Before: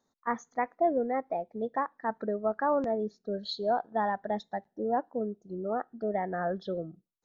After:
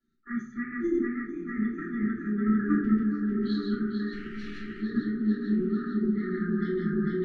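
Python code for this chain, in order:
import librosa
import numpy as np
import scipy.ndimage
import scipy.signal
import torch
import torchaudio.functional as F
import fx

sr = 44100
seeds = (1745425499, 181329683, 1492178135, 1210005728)

y = fx.reverse_delay_fb(x, sr, ms=224, feedback_pct=82, wet_db=-3.0)
y = scipy.signal.sosfilt(scipy.signal.butter(2, 2900.0, 'lowpass', fs=sr, output='sos'), y)
y = fx.peak_eq(y, sr, hz=180.0, db=2.5, octaves=0.48)
y = fx.level_steps(y, sr, step_db=12)
y = fx.power_curve(y, sr, exponent=2.0, at=(4.12, 4.8))
y = fx.brickwall_bandstop(y, sr, low_hz=420.0, high_hz=1200.0)
y = y + 10.0 ** (-21.5 / 20.0) * np.pad(y, (int(1077 * sr / 1000.0), 0))[:len(y)]
y = fx.room_shoebox(y, sr, seeds[0], volume_m3=35.0, walls='mixed', distance_m=2.4)
y = y * 10.0 ** (-5.0 / 20.0)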